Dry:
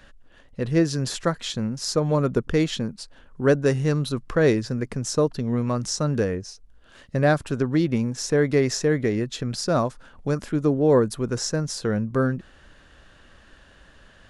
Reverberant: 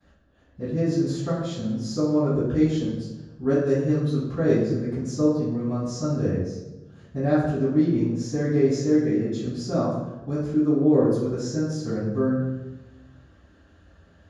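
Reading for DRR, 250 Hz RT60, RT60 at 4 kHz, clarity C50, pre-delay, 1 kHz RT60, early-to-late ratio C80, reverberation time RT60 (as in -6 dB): -21.5 dB, 1.4 s, 0.75 s, 0.0 dB, 3 ms, 1.0 s, 3.5 dB, 1.1 s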